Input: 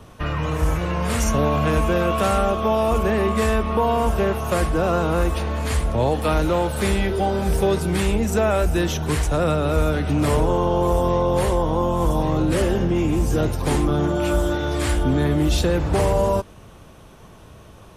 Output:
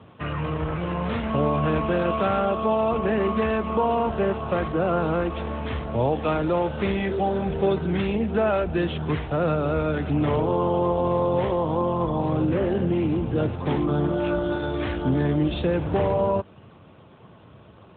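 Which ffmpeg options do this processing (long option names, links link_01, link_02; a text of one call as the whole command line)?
ffmpeg -i in.wav -filter_complex "[0:a]asettb=1/sr,asplit=3[link_01][link_02][link_03];[link_01]atrim=end=11.974[link_04];[link_02]atrim=start=11.97:end=12.83,asetpts=PTS-STARTPTS,afade=type=in:duration=0.004:curve=qsin,afade=type=out:start_time=0.856:duration=0.004:curve=qsin,acrossover=split=2600[link_05][link_06];[link_06]acompressor=threshold=-42dB:ratio=4:attack=1:release=60[link_07];[link_05][link_07]amix=inputs=2:normalize=0[link_08];[link_03]atrim=start=12.826[link_09];[link_04][link_08]acrossfade=duration=0.004:curve1=hsin:curve2=qsin[link_10];[link_10][link_09]acrossfade=duration=0.004:curve1=qsin:curve2=hsin,volume=-2dB" -ar 8000 -c:a libopencore_amrnb -b:a 12200 out.amr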